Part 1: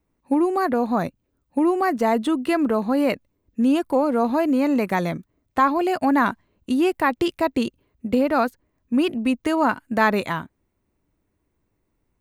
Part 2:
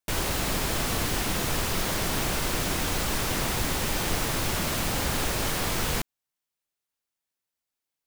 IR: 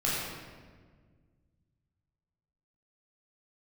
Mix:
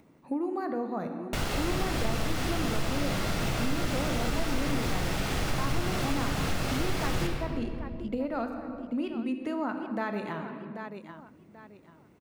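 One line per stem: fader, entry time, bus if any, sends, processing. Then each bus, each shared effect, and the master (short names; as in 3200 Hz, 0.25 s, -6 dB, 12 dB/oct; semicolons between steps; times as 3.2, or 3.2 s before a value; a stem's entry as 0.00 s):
-9.5 dB, 0.00 s, send -14 dB, echo send -13 dB, HPF 190 Hz 12 dB/oct; low shelf 380 Hz +7.5 dB; upward compressor, threshold -34 dBFS
+1.5 dB, 1.25 s, send -6.5 dB, no echo send, dry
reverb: on, RT60 1.6 s, pre-delay 13 ms
echo: feedback echo 0.786 s, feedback 25%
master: high shelf 8000 Hz -11.5 dB; compressor 2:1, threshold -34 dBFS, peak gain reduction 13 dB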